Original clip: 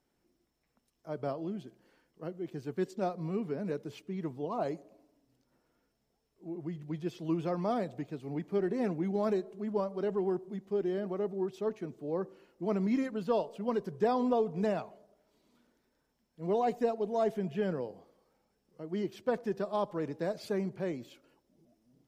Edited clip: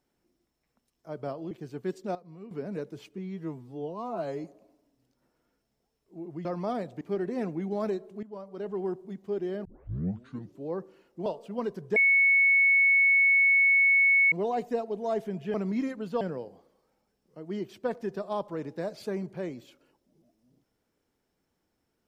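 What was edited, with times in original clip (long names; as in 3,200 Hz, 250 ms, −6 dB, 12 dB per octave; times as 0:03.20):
0:01.51–0:02.44: remove
0:03.08–0:03.44: clip gain −11.5 dB
0:04.11–0:04.74: time-stretch 2×
0:06.75–0:07.46: remove
0:08.02–0:08.44: remove
0:09.66–0:10.32: fade in, from −16 dB
0:11.08: tape start 1.01 s
0:12.69–0:13.36: move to 0:17.64
0:14.06–0:16.42: beep over 2,210 Hz −18 dBFS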